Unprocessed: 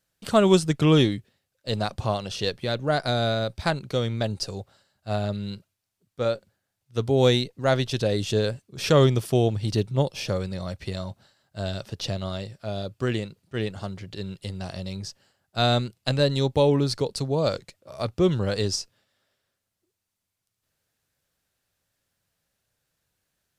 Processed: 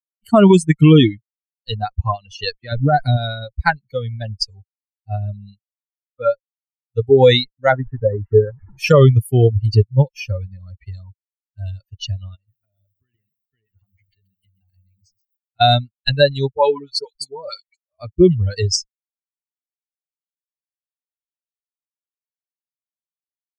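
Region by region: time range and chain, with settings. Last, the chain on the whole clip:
2.72–3.17 sample leveller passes 1 + compressor 2.5:1, threshold -25 dBFS + low shelf 470 Hz +7.5 dB
7.72–8.78 delta modulation 64 kbps, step -25.5 dBFS + LPF 1600 Hz 24 dB/oct
12.35–15.61 compressor 12:1, threshold -37 dBFS + lo-fi delay 0.13 s, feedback 35%, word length 10-bit, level -6 dB
16.54–17.92 low shelf 380 Hz -10 dB + dispersion highs, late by 60 ms, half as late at 1500 Hz
whole clip: per-bin expansion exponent 3; LPF 3300 Hz 6 dB/oct; maximiser +19.5 dB; gain -1 dB

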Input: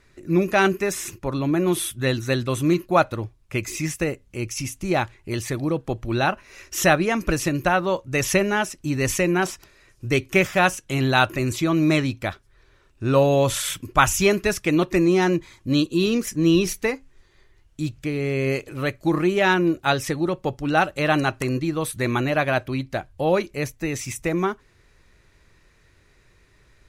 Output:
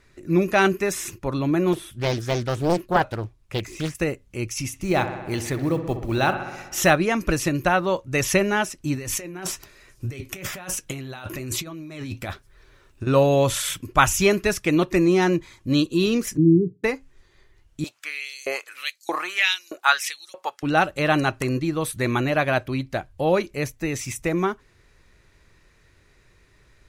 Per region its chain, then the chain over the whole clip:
1.73–3.95 de-esser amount 80% + Doppler distortion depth 0.98 ms
4.67–6.91 short-mantissa float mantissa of 4-bit + dark delay 63 ms, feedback 71%, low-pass 2500 Hz, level -10 dB
8.95–13.07 negative-ratio compressor -29 dBFS + high shelf 11000 Hz +7.5 dB + flange 1.1 Hz, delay 4.3 ms, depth 6.9 ms, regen -61%
16.37–16.84 Chebyshev band-pass 110–440 Hz, order 5 + low shelf 150 Hz +6.5 dB + comb 6.9 ms, depth 43%
17.84–20.63 tone controls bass -3 dB, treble +3 dB + LFO high-pass saw up 1.6 Hz 590–7000 Hz
whole clip: dry

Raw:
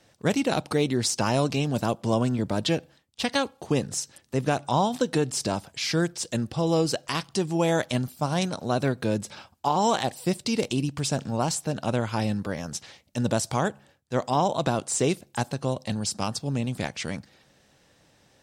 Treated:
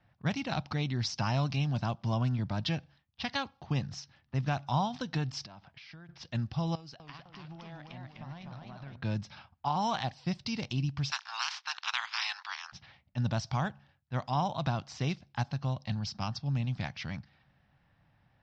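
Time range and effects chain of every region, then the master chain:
5.45–6.09 compressor 12:1, threshold -36 dBFS + low shelf 160 Hz -8 dB
6.75–8.96 low shelf 120 Hz -10.5 dB + compressor, threshold -37 dBFS + warbling echo 0.254 s, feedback 52%, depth 176 cents, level -3 dB
11.1–12.72 spectral limiter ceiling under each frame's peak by 29 dB + steep high-pass 890 Hz + transient shaper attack +1 dB, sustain -7 dB
whole clip: elliptic low-pass 5500 Hz, stop band 60 dB; low-pass opened by the level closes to 2000 Hz, open at -23.5 dBFS; EQ curve 140 Hz 0 dB, 460 Hz -19 dB, 740 Hz -6 dB

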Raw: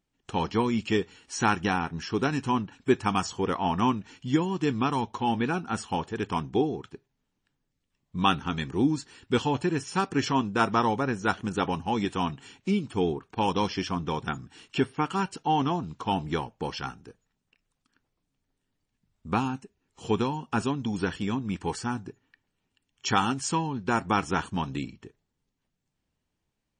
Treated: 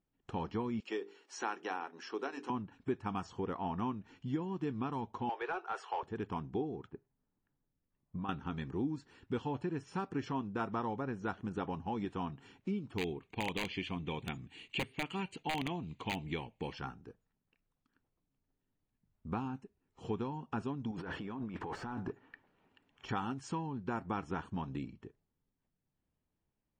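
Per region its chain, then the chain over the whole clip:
0.8–2.5 HPF 340 Hz 24 dB/oct + bell 5600 Hz +4.5 dB 0.91 oct + notches 50/100/150/200/250/300/350/400/450 Hz
5.29–6.03 elliptic high-pass 380 Hz + overdrive pedal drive 14 dB, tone 3300 Hz, clips at -15 dBFS
6.87–8.29 LPF 2000 Hz + compressor 4:1, threshold -30 dBFS
12.98–16.73 wrapped overs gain 16.5 dB + Butterworth band-stop 5400 Hz, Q 4 + resonant high shelf 1800 Hz +7.5 dB, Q 3
20.91–23.09 negative-ratio compressor -38 dBFS + overdrive pedal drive 20 dB, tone 1400 Hz, clips at -20.5 dBFS
whole clip: LPF 1300 Hz 6 dB/oct; compressor 2:1, threshold -34 dBFS; gain -4 dB

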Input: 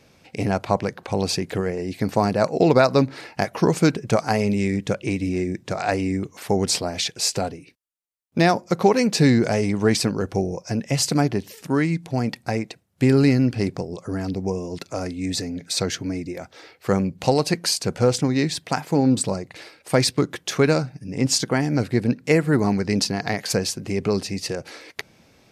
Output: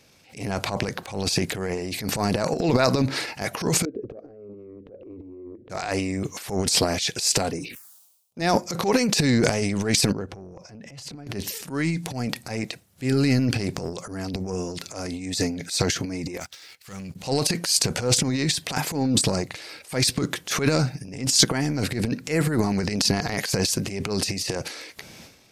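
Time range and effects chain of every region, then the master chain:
3.85–5.7 compressor 20:1, threshold -33 dBFS + synth low-pass 490 Hz, resonance Q 2 + fixed phaser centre 380 Hz, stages 4
7.5–8.42 HPF 150 Hz 6 dB/oct + envelope phaser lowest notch 290 Hz, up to 3200 Hz, full sweep at -35.5 dBFS + sustainer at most 72 dB/s
10.12–11.27 LPF 1400 Hz 6 dB/oct + compressor, threshold -35 dBFS
16.4–17.16 passive tone stack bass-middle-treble 5-5-5 + sample leveller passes 2
whole clip: high shelf 2600 Hz +9 dB; transient shaper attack -10 dB, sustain +12 dB; gain -4.5 dB

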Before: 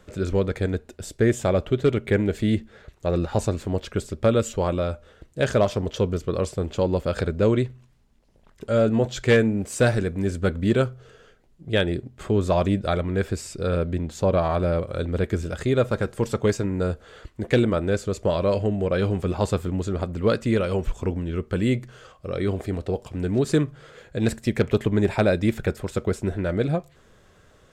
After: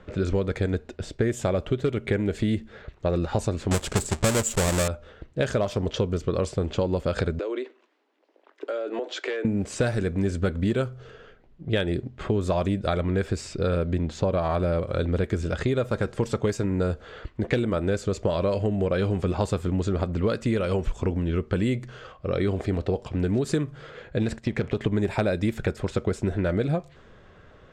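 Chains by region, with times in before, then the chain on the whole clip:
3.71–4.88 half-waves squared off + bell 7700 Hz +13 dB 0.46 oct
7.39–9.45 steep high-pass 280 Hz 72 dB/oct + compressor 16:1, threshold -29 dBFS
24.22–24.84 G.711 law mismatch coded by A + high shelf 7700 Hz -6.5 dB + compressor 4:1, threshold -21 dBFS
whole clip: low-pass opened by the level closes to 2900 Hz, open at -16.5 dBFS; compressor, threshold -25 dBFS; gain +4 dB

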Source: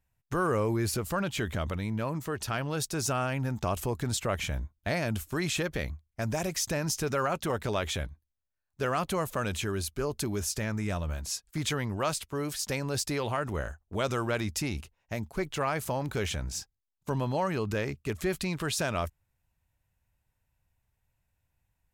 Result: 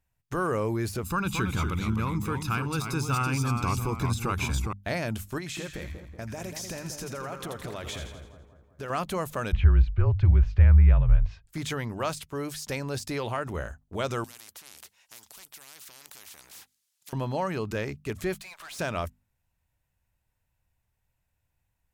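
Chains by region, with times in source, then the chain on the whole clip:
1.03–4.73 comb 0.8 ms, depth 82% + echoes that change speed 0.218 s, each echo -1 st, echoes 2, each echo -6 dB
5.38–8.9 compressor 10:1, threshold -32 dBFS + split-band echo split 1400 Hz, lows 0.188 s, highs 83 ms, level -7 dB
9.52–11.47 LPF 2700 Hz 24 dB/oct + resonant low shelf 190 Hz +14 dB, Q 3 + frequency shift -33 Hz
14.24–17.13 band-pass 7300 Hz, Q 0.67 + spectral compressor 10:1
18.34–18.79 steep high-pass 600 Hz 48 dB/oct + tube stage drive 40 dB, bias 0.3
whole clip: de-esser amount 65%; notches 50/100/150/200/250 Hz

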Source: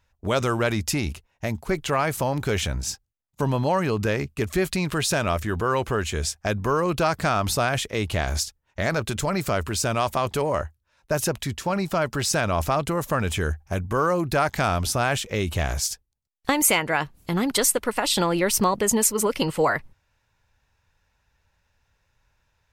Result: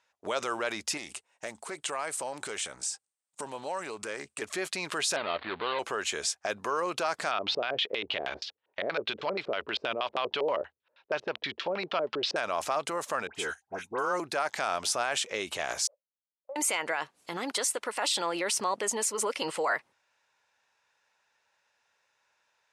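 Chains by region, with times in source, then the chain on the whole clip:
0.97–4.42 bell 8500 Hz +14.5 dB 0.44 oct + compressor, threshold -28 dBFS + Doppler distortion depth 0.17 ms
5.16–5.79 switching dead time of 0.23 ms + steep low-pass 4400 Hz 96 dB/oct
7.31–12.36 resonant high shelf 6000 Hz -9 dB, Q 1.5 + LFO low-pass square 6.3 Hz 450–3200 Hz
13.27–14.2 notch comb 580 Hz + dispersion highs, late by 79 ms, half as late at 1600 Hz + upward expander, over -42 dBFS
15.87–16.56 minimum comb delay 0.87 ms + Butterworth band-pass 560 Hz, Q 7.1
whole clip: LPF 9900 Hz 24 dB/oct; limiter -18.5 dBFS; HPF 500 Hz 12 dB/oct

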